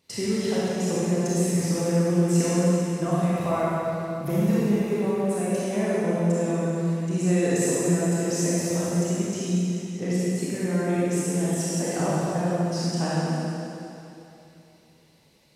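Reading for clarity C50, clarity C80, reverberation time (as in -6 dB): -6.5 dB, -4.0 dB, 2.9 s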